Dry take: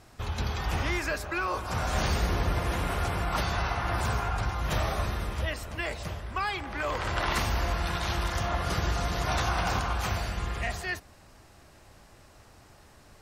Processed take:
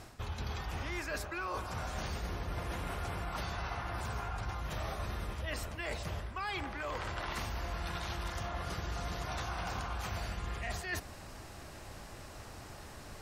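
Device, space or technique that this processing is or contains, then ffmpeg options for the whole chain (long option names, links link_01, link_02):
compression on the reversed sound: -af "areverse,acompressor=threshold=-41dB:ratio=12,areverse,volume=6dB"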